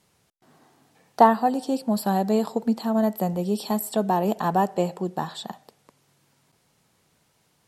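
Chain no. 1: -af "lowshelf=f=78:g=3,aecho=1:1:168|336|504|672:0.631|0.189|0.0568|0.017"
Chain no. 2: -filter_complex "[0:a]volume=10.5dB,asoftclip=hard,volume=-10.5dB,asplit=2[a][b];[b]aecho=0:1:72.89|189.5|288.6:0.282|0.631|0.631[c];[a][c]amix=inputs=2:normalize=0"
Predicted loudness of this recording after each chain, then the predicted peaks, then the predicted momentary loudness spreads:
-22.0, -21.5 LUFS; -2.0, -7.0 dBFS; 10, 9 LU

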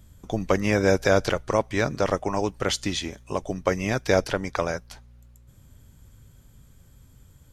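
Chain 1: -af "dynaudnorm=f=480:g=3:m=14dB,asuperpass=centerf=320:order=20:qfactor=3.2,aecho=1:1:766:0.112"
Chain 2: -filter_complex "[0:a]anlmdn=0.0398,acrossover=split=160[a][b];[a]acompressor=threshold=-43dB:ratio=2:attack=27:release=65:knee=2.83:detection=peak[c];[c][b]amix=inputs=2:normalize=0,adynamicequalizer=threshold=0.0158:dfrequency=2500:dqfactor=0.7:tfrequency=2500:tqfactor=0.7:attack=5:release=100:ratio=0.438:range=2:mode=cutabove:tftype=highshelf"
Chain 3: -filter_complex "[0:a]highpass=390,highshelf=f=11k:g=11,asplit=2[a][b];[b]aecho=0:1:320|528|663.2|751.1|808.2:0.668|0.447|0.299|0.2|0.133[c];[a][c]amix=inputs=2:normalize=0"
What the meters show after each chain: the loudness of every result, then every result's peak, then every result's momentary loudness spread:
-30.0, -25.5, -24.5 LUFS; -14.5, -6.0, -7.0 dBFS; 11, 10, 12 LU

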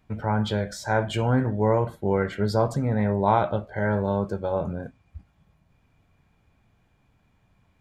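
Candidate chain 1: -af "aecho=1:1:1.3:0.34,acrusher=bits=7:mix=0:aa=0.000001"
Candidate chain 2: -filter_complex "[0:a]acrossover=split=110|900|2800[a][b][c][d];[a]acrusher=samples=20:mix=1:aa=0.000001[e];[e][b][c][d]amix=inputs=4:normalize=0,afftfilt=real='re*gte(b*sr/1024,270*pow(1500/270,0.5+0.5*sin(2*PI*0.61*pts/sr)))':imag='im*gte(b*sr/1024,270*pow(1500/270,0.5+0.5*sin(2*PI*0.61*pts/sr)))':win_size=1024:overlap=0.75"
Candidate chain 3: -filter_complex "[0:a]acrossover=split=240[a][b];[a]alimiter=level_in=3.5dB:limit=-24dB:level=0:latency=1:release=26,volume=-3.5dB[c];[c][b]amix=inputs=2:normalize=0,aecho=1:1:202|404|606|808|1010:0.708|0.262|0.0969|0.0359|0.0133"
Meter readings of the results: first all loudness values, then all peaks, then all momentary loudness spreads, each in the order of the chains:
-24.5, -30.0, -24.5 LUFS; -7.0, -10.0, -5.5 dBFS; 6, 12, 7 LU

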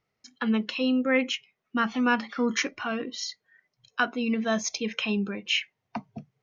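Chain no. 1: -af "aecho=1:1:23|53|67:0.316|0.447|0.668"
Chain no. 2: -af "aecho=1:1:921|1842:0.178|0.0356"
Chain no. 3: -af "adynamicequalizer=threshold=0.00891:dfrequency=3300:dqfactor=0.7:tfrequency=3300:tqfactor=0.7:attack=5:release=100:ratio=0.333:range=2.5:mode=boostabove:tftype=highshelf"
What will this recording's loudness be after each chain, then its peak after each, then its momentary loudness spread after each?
-25.5, -28.0, -27.0 LUFS; -10.0, -10.0, -10.0 dBFS; 11, 13, 13 LU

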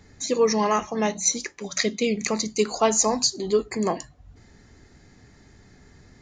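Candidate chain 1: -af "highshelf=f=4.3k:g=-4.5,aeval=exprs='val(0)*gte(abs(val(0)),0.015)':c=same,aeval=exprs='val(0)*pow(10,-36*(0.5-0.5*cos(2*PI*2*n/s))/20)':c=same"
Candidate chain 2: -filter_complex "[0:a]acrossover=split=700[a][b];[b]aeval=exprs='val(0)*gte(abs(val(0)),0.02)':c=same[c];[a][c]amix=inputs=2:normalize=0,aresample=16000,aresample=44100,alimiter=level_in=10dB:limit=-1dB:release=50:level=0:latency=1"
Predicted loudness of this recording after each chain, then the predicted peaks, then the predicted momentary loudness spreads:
-30.5, -14.5 LUFS; -9.5, -1.0 dBFS; 16, 7 LU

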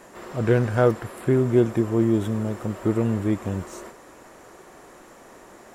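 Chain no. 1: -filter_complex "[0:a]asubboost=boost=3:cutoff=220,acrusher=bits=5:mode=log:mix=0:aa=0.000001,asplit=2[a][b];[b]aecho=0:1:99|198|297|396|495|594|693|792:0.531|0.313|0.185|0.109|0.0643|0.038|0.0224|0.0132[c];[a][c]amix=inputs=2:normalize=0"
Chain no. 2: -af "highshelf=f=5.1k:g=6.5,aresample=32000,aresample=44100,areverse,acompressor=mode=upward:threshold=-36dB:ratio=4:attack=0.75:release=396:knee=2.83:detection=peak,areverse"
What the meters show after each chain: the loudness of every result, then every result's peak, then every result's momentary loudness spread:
-20.0, -23.0 LUFS; -4.5, -5.0 dBFS; 10, 13 LU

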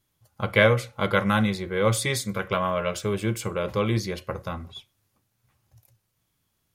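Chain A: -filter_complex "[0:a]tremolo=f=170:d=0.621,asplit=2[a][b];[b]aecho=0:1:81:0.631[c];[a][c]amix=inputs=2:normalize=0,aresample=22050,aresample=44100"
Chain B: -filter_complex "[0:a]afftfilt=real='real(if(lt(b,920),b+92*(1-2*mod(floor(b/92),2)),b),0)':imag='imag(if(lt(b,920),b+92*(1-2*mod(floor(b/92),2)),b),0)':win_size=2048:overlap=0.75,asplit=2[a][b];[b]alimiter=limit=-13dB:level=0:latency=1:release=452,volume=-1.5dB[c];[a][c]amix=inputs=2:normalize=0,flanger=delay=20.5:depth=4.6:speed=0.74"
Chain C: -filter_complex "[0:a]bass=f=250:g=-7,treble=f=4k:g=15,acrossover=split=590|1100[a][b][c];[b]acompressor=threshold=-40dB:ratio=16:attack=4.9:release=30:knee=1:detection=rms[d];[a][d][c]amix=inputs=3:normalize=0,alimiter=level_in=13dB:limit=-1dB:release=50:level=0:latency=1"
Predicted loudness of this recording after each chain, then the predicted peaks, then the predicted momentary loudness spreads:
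-26.5, -21.5, -14.0 LUFS; -6.0, -5.5, -1.0 dBFS; 14, 10, 12 LU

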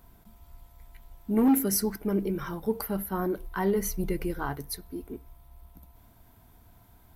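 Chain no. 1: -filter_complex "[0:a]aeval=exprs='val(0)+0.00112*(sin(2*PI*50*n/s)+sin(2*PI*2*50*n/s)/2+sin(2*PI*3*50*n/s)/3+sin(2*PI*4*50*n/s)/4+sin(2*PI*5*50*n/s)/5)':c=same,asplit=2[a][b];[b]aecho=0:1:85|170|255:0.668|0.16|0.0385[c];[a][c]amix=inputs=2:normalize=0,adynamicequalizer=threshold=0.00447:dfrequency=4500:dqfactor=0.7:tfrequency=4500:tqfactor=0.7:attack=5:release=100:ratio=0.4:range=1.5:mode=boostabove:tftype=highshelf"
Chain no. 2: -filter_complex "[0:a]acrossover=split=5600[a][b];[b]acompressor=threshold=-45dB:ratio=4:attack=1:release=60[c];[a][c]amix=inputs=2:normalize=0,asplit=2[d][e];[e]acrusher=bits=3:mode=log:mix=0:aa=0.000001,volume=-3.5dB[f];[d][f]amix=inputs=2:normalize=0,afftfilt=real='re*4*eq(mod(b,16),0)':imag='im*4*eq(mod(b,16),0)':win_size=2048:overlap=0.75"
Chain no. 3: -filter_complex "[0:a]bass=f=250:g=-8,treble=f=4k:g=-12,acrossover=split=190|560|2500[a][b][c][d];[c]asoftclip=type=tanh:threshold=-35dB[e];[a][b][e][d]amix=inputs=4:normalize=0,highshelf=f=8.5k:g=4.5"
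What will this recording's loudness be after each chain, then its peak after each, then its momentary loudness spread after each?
-26.5, -30.5, -33.0 LUFS; -9.5, -12.5, -17.5 dBFS; 16, 14, 16 LU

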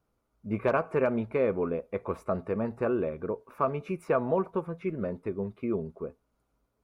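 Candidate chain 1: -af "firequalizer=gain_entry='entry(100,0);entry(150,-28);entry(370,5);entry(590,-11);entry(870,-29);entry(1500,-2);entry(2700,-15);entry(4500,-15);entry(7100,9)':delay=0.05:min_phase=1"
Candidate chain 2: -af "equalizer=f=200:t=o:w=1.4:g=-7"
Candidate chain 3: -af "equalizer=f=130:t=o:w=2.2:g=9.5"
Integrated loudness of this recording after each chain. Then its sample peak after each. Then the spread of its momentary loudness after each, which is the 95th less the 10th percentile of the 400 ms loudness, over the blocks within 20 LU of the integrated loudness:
-33.0, -32.5, -27.0 LUFS; -16.0, -15.0, -11.0 dBFS; 8, 10, 8 LU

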